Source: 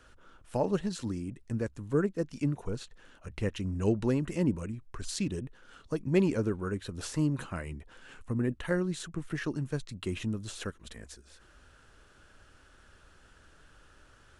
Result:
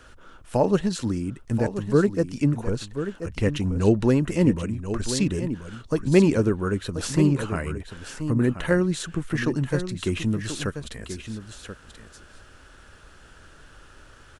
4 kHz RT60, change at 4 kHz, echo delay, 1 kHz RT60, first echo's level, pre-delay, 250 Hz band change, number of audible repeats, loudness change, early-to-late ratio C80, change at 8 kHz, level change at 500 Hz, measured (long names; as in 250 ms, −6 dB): no reverb audible, +9.0 dB, 1,033 ms, no reverb audible, −10.0 dB, no reverb audible, +9.0 dB, 1, +8.5 dB, no reverb audible, +9.0 dB, +9.0 dB